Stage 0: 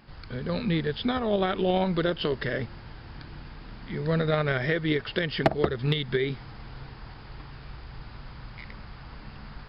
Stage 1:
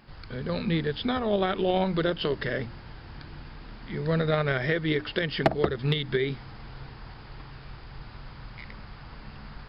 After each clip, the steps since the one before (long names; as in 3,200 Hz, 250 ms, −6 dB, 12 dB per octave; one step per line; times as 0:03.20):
mains-hum notches 60/120/180/240/300 Hz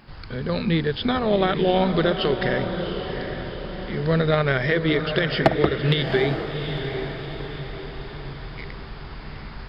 feedback delay with all-pass diffusion 757 ms, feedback 49%, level −7.5 dB
level +5 dB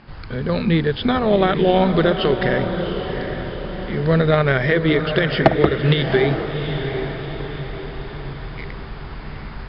high-frequency loss of the air 140 metres
level +4.5 dB